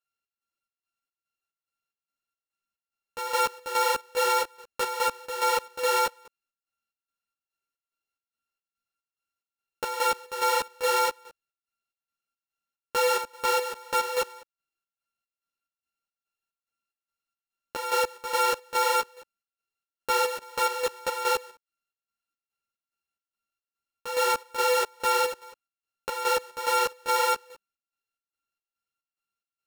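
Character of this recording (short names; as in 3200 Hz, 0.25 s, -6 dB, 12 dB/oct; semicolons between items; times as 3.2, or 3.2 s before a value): a buzz of ramps at a fixed pitch in blocks of 32 samples; chopped level 2.4 Hz, depth 65%, duty 60%; a shimmering, thickened sound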